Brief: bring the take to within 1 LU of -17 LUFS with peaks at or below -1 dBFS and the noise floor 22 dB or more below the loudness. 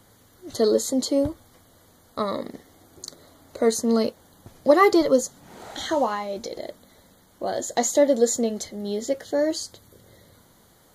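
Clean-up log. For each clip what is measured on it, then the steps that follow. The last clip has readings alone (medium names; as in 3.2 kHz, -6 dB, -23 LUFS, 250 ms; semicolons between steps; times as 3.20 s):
loudness -23.5 LUFS; peak level -3.5 dBFS; loudness target -17.0 LUFS
-> trim +6.5 dB; peak limiter -1 dBFS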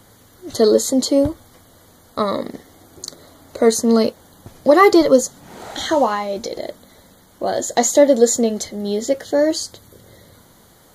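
loudness -17.0 LUFS; peak level -1.0 dBFS; noise floor -50 dBFS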